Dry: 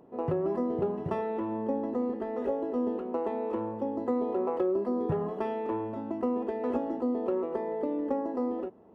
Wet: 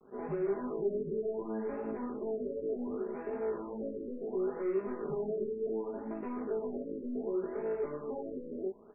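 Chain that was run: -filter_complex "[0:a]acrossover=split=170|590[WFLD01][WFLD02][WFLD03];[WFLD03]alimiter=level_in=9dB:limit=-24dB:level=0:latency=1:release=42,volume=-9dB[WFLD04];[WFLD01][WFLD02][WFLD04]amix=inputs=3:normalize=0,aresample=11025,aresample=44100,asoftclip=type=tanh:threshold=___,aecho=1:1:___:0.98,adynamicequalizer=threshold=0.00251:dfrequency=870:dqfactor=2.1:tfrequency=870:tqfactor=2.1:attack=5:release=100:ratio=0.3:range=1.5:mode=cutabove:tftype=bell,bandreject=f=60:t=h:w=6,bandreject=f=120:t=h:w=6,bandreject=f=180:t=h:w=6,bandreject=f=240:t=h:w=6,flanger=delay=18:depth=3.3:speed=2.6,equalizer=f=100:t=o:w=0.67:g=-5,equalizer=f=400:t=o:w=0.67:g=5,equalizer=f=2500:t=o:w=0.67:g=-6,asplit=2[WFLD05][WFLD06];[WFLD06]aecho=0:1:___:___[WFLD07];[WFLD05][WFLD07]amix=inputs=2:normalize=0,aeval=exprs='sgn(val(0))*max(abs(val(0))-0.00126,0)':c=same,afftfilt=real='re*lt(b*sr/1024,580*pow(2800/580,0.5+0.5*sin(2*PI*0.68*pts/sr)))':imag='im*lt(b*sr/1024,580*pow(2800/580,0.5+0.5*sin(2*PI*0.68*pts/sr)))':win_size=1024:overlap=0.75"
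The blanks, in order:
-35.5dB, 4.9, 317, 0.0891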